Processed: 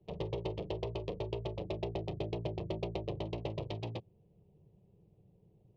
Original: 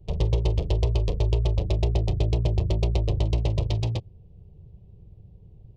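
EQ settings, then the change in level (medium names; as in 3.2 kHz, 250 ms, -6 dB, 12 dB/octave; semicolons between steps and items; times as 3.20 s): three-band isolator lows -21 dB, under 150 Hz, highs -17 dB, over 3.7 kHz; -6.0 dB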